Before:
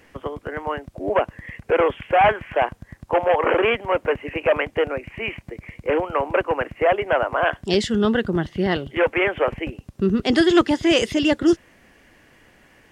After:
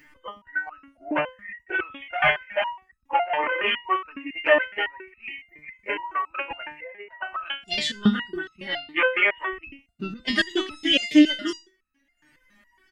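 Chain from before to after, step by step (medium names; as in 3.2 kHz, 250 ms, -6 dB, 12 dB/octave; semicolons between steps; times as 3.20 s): coarse spectral quantiser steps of 15 dB; comb 3.3 ms, depth 46%; 6.71–7.21 s: compression 4:1, threshold -31 dBFS, peak gain reduction 15 dB; reverberation, pre-delay 33 ms, DRR 17 dB; spectral noise reduction 13 dB; dynamic bell 3.7 kHz, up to +6 dB, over -40 dBFS, Q 1.3; transient shaper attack +6 dB, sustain +1 dB; upward compressor, threshold -42 dBFS; ten-band graphic EQ 250 Hz +4 dB, 500 Hz -8 dB, 1 kHz +3 dB, 2 kHz +7 dB; resonator arpeggio 7.2 Hz 150–1300 Hz; trim +5.5 dB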